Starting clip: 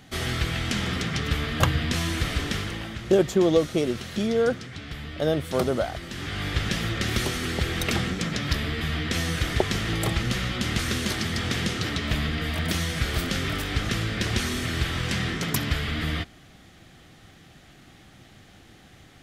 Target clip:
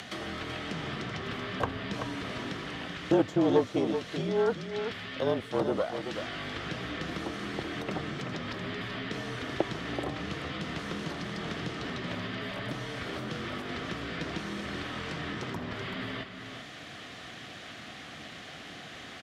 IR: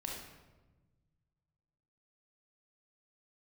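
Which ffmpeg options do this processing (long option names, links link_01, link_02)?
-filter_complex "[0:a]aemphasis=mode=production:type=bsi,afreqshift=-43,acrossover=split=1100[link_01][link_02];[link_01]aeval=exprs='0.422*(cos(1*acos(clip(val(0)/0.422,-1,1)))-cos(1*PI/2))+0.0473*(cos(6*acos(clip(val(0)/0.422,-1,1)))-cos(6*PI/2))':channel_layout=same[link_03];[link_02]acompressor=threshold=-36dB:ratio=6[link_04];[link_03][link_04]amix=inputs=2:normalize=0,highpass=100,lowpass=3500,acompressor=mode=upward:threshold=-31dB:ratio=2.5,asplit=2[link_05][link_06];[link_06]aecho=0:1:382:0.398[link_07];[link_05][link_07]amix=inputs=2:normalize=0,volume=-2.5dB"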